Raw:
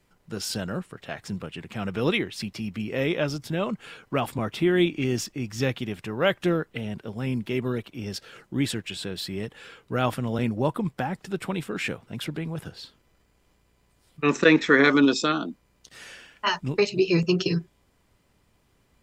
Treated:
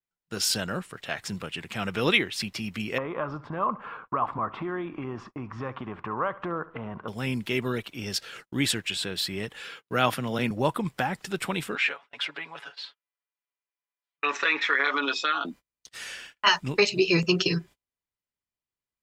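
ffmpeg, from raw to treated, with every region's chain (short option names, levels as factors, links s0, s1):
-filter_complex "[0:a]asettb=1/sr,asplit=3[s0][s1][s2];[s0]atrim=end=2.984[s3];[s1]atrim=start=2.98:end=7.08,asetpts=PTS-STARTPTS,afade=t=in:d=0.004:c=qsin,afade=t=out:st=4.096:d=0.004:c=qsin,acompressor=threshold=0.0355:ratio=5:attack=3.2:release=140:knee=1:detection=peak,lowpass=f=1100:t=q:w=5.9,aecho=1:1:69|138|207|276:0.119|0.0547|0.0251|0.0116,atrim=end_sample=180810[s4];[s2]atrim=start=7.076[s5];[s3][s4]acrossfade=d=0.004:c1=hsin:c2=qsin[s6];[s6][s5]acrossfade=d=0.004:c1=qsin:c2=hsin,asettb=1/sr,asplit=3[s7][s8][s9];[s7]atrim=end=9.624[s10];[s8]atrim=start=9.62:end=10.51,asetpts=PTS-STARTPTS,afade=t=in:d=0.004:c=qsin,afade=t=out:st=0.886:d=0.004:c=qsin,highpass=f=110:w=0.5412,highpass=f=110:w=1.3066,equalizer=f=7900:t=o:w=0.22:g=-7[s11];[s9]atrim=start=10.506[s12];[s10][s11]acrossfade=d=0.004:c1=hsin:c2=qsin[s13];[s13][s12]acrossfade=d=0.004:c1=qsin:c2=hsin,asettb=1/sr,asplit=3[s14][s15][s16];[s14]atrim=end=11.754[s17];[s15]atrim=start=11.75:end=15.45,asetpts=PTS-STARTPTS,afade=t=in:d=0.004:c=qsin,afade=t=out:st=3.696:d=0.004:c=qsin,highpass=730,lowpass=3200,aecho=1:1:7.1:0.77,atrim=end_sample=163170,acompressor=threshold=0.0631:ratio=4:attack=3.2:release=140:knee=1:detection=peak[s18];[s16]atrim=start=15.446[s19];[s17][s18]acrossfade=d=0.004:c1=hsin:c2=qsin[s20];[s20][s19]acrossfade=d=0.004:c1=qsin:c2=hsin,tiltshelf=f=870:g=-5,agate=range=0.0224:threshold=0.00501:ratio=16:detection=peak,adynamicequalizer=threshold=0.0112:dfrequency=3300:dqfactor=0.7:tfrequency=3300:tqfactor=0.7:attack=5:release=100:ratio=0.375:range=2:mode=cutabove:tftype=highshelf,volume=1.26"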